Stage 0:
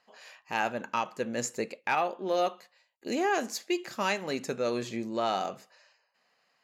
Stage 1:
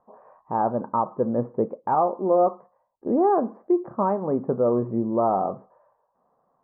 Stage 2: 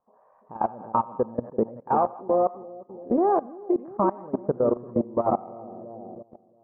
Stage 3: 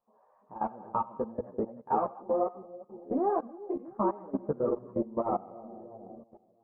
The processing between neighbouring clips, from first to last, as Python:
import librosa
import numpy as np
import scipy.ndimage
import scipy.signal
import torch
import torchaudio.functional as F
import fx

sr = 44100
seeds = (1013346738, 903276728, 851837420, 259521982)

y1 = scipy.signal.sosfilt(scipy.signal.ellip(4, 1.0, 70, 1100.0, 'lowpass', fs=sr, output='sos'), x)
y1 = fx.low_shelf(y1, sr, hz=110.0, db=10.0)
y1 = y1 * 10.0 ** (8.5 / 20.0)
y2 = fx.transient(y1, sr, attack_db=3, sustain_db=-2)
y2 = fx.echo_split(y2, sr, split_hz=650.0, low_ms=338, high_ms=88, feedback_pct=52, wet_db=-7)
y2 = fx.level_steps(y2, sr, step_db=20)
y3 = fx.ensemble(y2, sr)
y3 = y3 * 10.0 ** (-3.0 / 20.0)